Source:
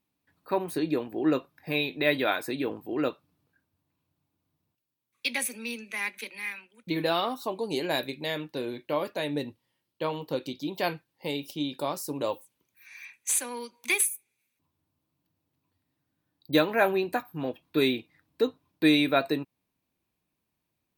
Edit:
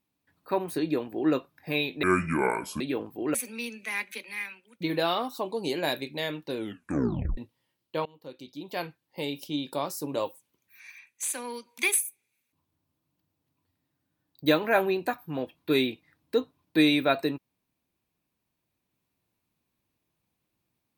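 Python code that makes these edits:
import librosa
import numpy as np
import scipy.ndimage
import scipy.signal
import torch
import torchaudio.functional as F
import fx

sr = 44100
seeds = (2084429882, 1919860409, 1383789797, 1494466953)

y = fx.edit(x, sr, fx.speed_span(start_s=2.03, length_s=0.48, speed=0.62),
    fx.cut(start_s=3.05, length_s=2.36),
    fx.tape_stop(start_s=8.63, length_s=0.81),
    fx.fade_in_from(start_s=10.12, length_s=1.29, floor_db=-23.5),
    fx.clip_gain(start_s=12.98, length_s=0.42, db=-5.0), tone=tone)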